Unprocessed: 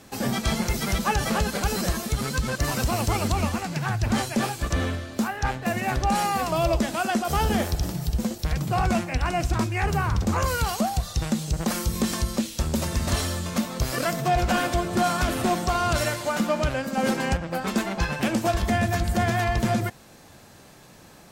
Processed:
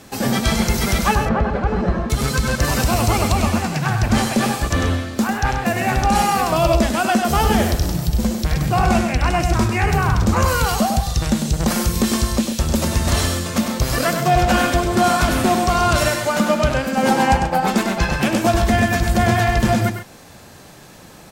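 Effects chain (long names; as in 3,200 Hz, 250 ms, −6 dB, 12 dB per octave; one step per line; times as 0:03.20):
0:01.15–0:02.10: low-pass filter 1,400 Hz 12 dB per octave
0:17.05–0:17.67: parametric band 850 Hz +15 dB 0.26 octaves
loudspeakers that aren't time-aligned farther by 34 metres −7 dB, 46 metres −11 dB
level +6 dB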